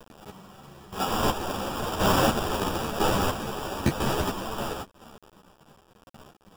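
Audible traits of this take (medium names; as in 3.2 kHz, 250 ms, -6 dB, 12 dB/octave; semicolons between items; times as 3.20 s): a quantiser's noise floor 8-bit, dither none; chopped level 1 Hz, depth 60%, duty 30%; aliases and images of a low sample rate 2.1 kHz, jitter 0%; a shimmering, thickened sound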